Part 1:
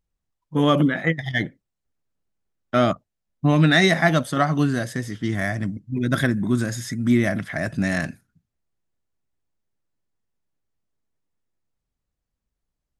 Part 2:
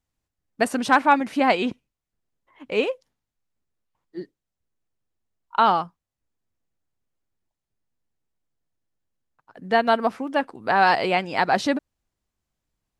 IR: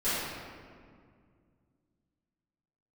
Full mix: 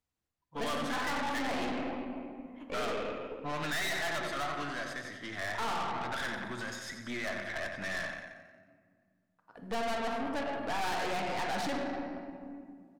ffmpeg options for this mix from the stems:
-filter_complex "[0:a]acrossover=split=550 5600:gain=0.126 1 0.2[a][b][c];[a][b][c]amix=inputs=3:normalize=0,volume=-3.5dB,asplit=4[d][e][f][g];[e]volume=-20.5dB[h];[f]volume=-8dB[i];[1:a]highpass=58,volume=-5.5dB,asplit=2[j][k];[k]volume=-12.5dB[l];[g]apad=whole_len=573087[m];[j][m]sidechaincompress=threshold=-32dB:ratio=8:attack=16:release=451[n];[2:a]atrim=start_sample=2205[o];[h][l]amix=inputs=2:normalize=0[p];[p][o]afir=irnorm=-1:irlink=0[q];[i]aecho=0:1:90|180|270|360|450|540|630|720:1|0.55|0.303|0.166|0.0915|0.0503|0.0277|0.0152[r];[d][n][q][r]amix=inputs=4:normalize=0,aeval=exprs='(tanh(39.8*val(0)+0.55)-tanh(0.55))/39.8':c=same"

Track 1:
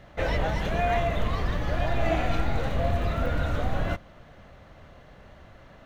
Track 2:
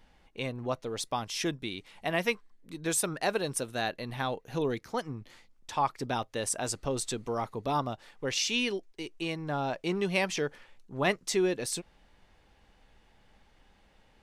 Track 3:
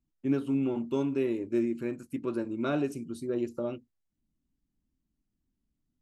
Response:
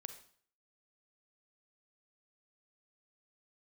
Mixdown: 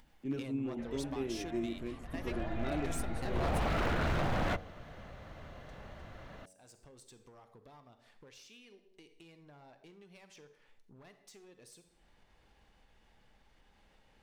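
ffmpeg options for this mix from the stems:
-filter_complex "[0:a]acrossover=split=3400[a][b];[b]acompressor=threshold=-55dB:ratio=4:attack=1:release=60[c];[a][c]amix=inputs=2:normalize=0,adelay=600,afade=t=in:st=2.02:d=0.35:silence=0.281838,afade=t=in:st=3.23:d=0.42:silence=0.237137[d];[1:a]acompressor=threshold=-43dB:ratio=2.5,aeval=exprs='clip(val(0),-1,0.0126)':c=same,volume=-4dB,asplit=2[e][f];[f]volume=-18dB[g];[2:a]equalizer=f=980:t=o:w=1.8:g=-6.5,volume=-7dB,asplit=2[h][i];[i]apad=whole_len=627285[j];[e][j]sidechaingate=range=-33dB:threshold=-50dB:ratio=16:detection=peak[k];[3:a]atrim=start_sample=2205[l];[g][l]afir=irnorm=-1:irlink=0[m];[d][k][h][m]amix=inputs=4:normalize=0,aeval=exprs='0.0501*(abs(mod(val(0)/0.0501+3,4)-2)-1)':c=same,bandreject=f=93.45:t=h:w=4,bandreject=f=186.9:t=h:w=4,bandreject=f=280.35:t=h:w=4,bandreject=f=373.8:t=h:w=4,bandreject=f=467.25:t=h:w=4,bandreject=f=560.7:t=h:w=4,bandreject=f=654.15:t=h:w=4,bandreject=f=747.6:t=h:w=4,bandreject=f=841.05:t=h:w=4,acompressor=mode=upward:threshold=-47dB:ratio=2.5"

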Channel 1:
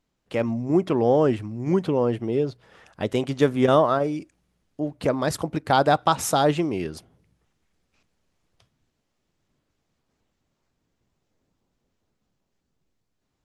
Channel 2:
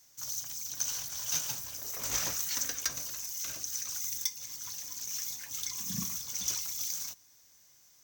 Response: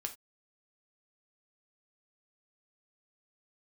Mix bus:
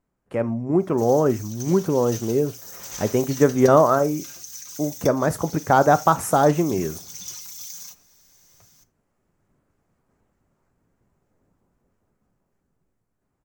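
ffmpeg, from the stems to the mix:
-filter_complex "[0:a]firequalizer=gain_entry='entry(1400,0);entry(3500,-16);entry(8400,-3)':delay=0.05:min_phase=1,volume=-3dB,asplit=2[a][b];[b]volume=-4dB[c];[1:a]aecho=1:1:5.7:0.61,acompressor=threshold=-46dB:ratio=1.5,adelay=800,volume=-4dB,asplit=2[d][e];[e]volume=-4.5dB[f];[2:a]atrim=start_sample=2205[g];[c][f]amix=inputs=2:normalize=0[h];[h][g]afir=irnorm=-1:irlink=0[i];[a][d][i]amix=inputs=3:normalize=0,dynaudnorm=f=890:g=5:m=6dB"

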